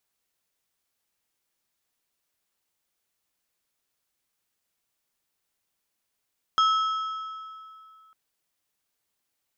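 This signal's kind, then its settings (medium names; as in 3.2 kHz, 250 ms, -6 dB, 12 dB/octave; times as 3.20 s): metal hit plate, lowest mode 1.3 kHz, modes 4, decay 2.47 s, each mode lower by 9 dB, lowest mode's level -17 dB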